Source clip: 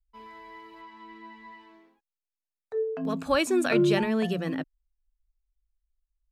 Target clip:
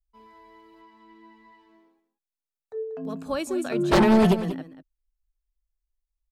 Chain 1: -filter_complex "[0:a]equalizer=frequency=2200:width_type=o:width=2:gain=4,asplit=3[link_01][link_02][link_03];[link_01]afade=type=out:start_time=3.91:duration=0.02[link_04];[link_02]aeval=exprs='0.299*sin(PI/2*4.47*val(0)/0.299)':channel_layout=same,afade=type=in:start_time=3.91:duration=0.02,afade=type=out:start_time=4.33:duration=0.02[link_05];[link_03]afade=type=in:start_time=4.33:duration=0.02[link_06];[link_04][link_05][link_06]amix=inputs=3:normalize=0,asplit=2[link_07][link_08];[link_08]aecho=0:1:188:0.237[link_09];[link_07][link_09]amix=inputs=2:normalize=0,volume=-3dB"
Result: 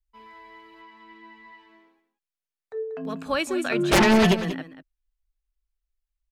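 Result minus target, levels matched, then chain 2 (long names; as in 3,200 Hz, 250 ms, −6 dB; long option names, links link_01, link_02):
2,000 Hz band +6.0 dB
-filter_complex "[0:a]equalizer=frequency=2200:width_type=o:width=2:gain=-6.5,asplit=3[link_01][link_02][link_03];[link_01]afade=type=out:start_time=3.91:duration=0.02[link_04];[link_02]aeval=exprs='0.299*sin(PI/2*4.47*val(0)/0.299)':channel_layout=same,afade=type=in:start_time=3.91:duration=0.02,afade=type=out:start_time=4.33:duration=0.02[link_05];[link_03]afade=type=in:start_time=4.33:duration=0.02[link_06];[link_04][link_05][link_06]amix=inputs=3:normalize=0,asplit=2[link_07][link_08];[link_08]aecho=0:1:188:0.237[link_09];[link_07][link_09]amix=inputs=2:normalize=0,volume=-3dB"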